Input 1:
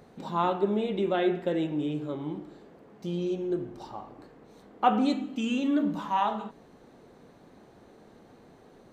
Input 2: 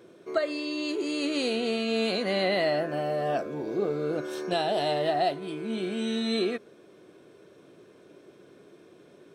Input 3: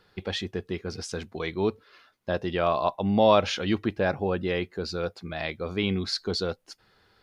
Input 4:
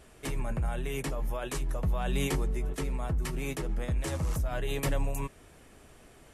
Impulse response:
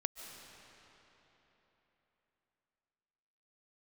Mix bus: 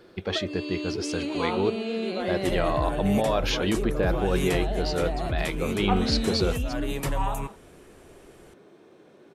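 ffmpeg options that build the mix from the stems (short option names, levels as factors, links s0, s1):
-filter_complex "[0:a]highpass=280,adelay=1050,volume=0.562[s0];[1:a]bass=f=250:g=0,treble=f=4000:g=-5,acrossover=split=330[s1][s2];[s2]acompressor=threshold=0.0224:ratio=4[s3];[s1][s3]amix=inputs=2:normalize=0,volume=0.944[s4];[2:a]alimiter=limit=0.133:level=0:latency=1:release=54,volume=1.26[s5];[3:a]adelay=2200,volume=1.12[s6];[s0][s4][s5][s6]amix=inputs=4:normalize=0"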